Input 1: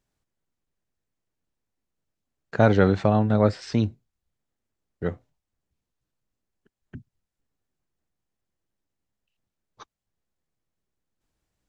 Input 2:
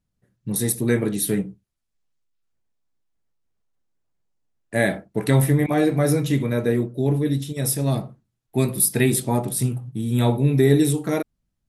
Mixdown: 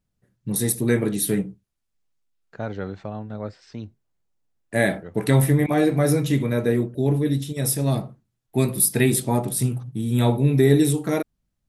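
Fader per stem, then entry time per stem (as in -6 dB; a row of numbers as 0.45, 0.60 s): -12.5, 0.0 dB; 0.00, 0.00 s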